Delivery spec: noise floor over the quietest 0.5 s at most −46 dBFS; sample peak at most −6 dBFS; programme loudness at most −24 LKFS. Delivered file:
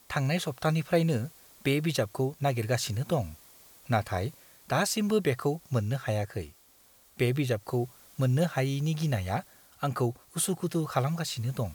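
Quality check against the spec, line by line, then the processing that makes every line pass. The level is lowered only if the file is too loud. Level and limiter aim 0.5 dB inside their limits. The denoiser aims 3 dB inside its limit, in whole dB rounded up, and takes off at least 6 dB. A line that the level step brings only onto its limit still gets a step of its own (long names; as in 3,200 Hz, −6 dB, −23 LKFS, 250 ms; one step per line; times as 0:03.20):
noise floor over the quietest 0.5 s −60 dBFS: in spec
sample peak −12.5 dBFS: in spec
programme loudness −30.0 LKFS: in spec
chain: no processing needed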